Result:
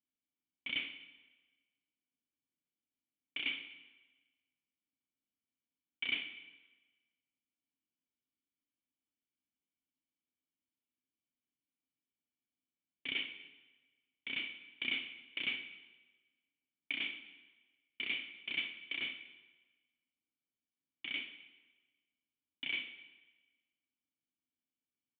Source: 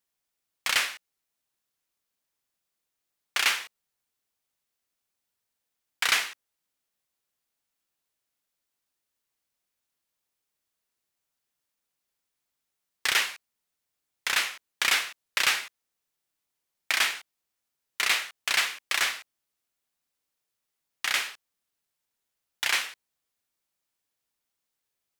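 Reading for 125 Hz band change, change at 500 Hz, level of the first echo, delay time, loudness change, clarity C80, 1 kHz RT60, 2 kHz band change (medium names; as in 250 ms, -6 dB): no reading, -15.5 dB, -24.0 dB, 245 ms, -13.0 dB, 13.5 dB, 1.3 s, -12.5 dB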